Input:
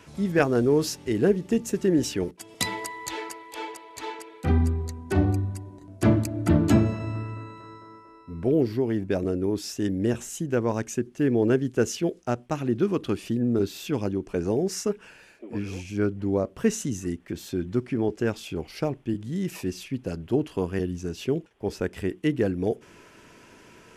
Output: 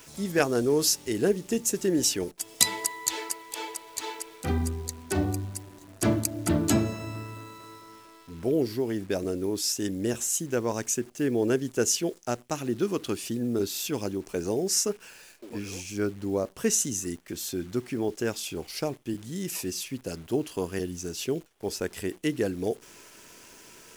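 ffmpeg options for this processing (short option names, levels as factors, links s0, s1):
-af "bass=f=250:g=-5,treble=f=4000:g=13,acrusher=bits=9:dc=4:mix=0:aa=0.000001,volume=0.794"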